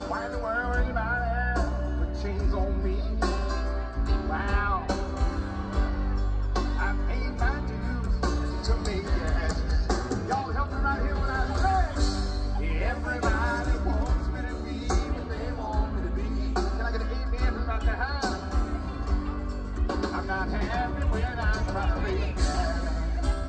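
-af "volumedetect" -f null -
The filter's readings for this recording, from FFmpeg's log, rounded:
mean_volume: -26.7 dB
max_volume: -12.9 dB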